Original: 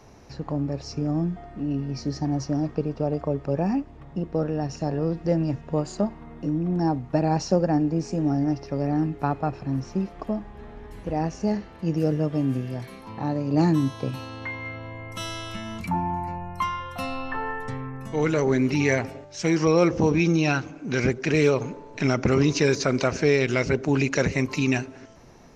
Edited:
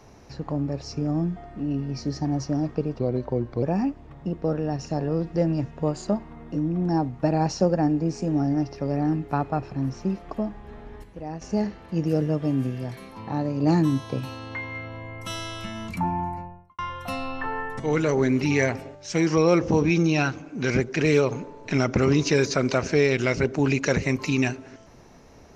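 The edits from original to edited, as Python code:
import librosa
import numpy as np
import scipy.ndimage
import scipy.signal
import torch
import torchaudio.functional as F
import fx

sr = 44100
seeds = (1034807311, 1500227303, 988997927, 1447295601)

y = fx.studio_fade_out(x, sr, start_s=16.08, length_s=0.61)
y = fx.edit(y, sr, fx.speed_span(start_s=2.99, length_s=0.54, speed=0.85),
    fx.clip_gain(start_s=10.94, length_s=0.38, db=-8.5),
    fx.cut(start_s=17.7, length_s=0.39), tone=tone)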